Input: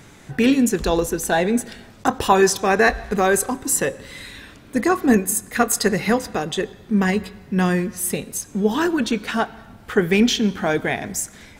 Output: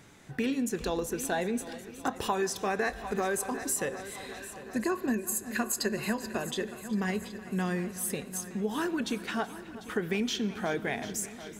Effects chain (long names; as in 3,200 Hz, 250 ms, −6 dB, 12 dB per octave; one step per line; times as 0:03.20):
0:04.36–0:06.44: EQ curve with evenly spaced ripples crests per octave 1.4, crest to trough 10 dB
echo machine with several playback heads 373 ms, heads first and second, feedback 62%, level −19.5 dB
downward compressor 5 to 1, threshold −17 dBFS, peak gain reduction 9 dB
low-shelf EQ 66 Hz −7 dB
level −9 dB